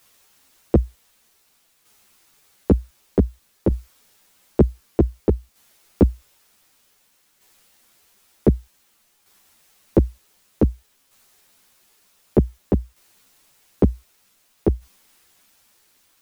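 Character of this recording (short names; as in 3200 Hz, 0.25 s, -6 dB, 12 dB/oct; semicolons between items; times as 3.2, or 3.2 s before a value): a quantiser's noise floor 10-bit, dither triangular; tremolo saw down 0.54 Hz, depth 50%; a shimmering, thickened sound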